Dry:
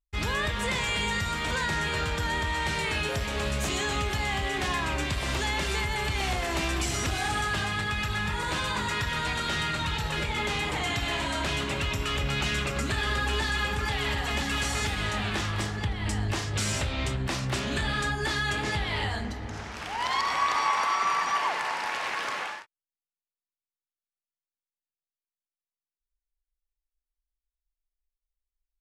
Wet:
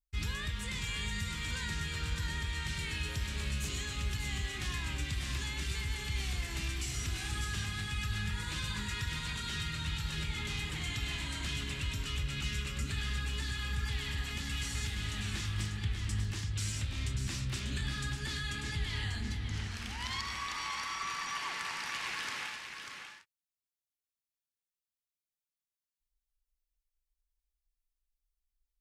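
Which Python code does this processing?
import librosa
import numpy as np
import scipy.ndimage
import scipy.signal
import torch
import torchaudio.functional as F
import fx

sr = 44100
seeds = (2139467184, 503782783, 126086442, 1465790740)

p1 = fx.tone_stack(x, sr, knobs='6-0-2')
p2 = fx.rider(p1, sr, range_db=5, speed_s=0.5)
p3 = p2 + fx.echo_single(p2, sr, ms=592, db=-6.5, dry=0)
y = p3 * librosa.db_to_amplitude(8.5)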